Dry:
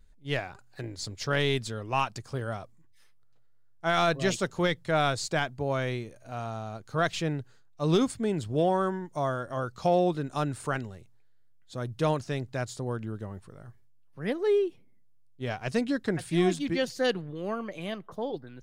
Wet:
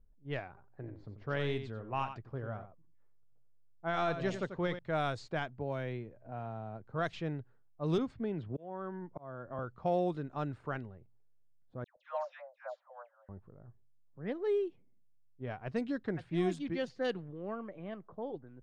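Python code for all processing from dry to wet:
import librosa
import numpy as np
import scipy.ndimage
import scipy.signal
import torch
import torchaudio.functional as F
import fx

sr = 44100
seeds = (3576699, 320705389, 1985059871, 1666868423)

y = fx.chain(x, sr, fx.lowpass(hz=3700.0, slope=6),
    fx.echo_single(ms=90, db=-9.5), at=(0.48, 4.79))
y = fx.chain(y, sr, fx.peak_eq(hz=1200.0, db=-7.0, octaves=0.22),
    fx.resample_bad(factor=3, down='filtered', up='hold'),
    fx.band_squash(depth_pct=40), at=(5.59, 6.92))
y = fx.chain(y, sr, fx.lowpass(hz=3600.0, slope=12),
    fx.auto_swell(attack_ms=773.0),
    fx.band_squash(depth_pct=70), at=(7.98, 9.59))
y = fx.chain(y, sr, fx.brickwall_bandpass(low_hz=510.0, high_hz=7500.0),
    fx.dispersion(late='lows', ms=126.0, hz=1300.0), at=(11.84, 13.29))
y = fx.env_lowpass(y, sr, base_hz=770.0, full_db=-20.5)
y = fx.high_shelf(y, sr, hz=2900.0, db=-8.0)
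y = y * 10.0 ** (-7.0 / 20.0)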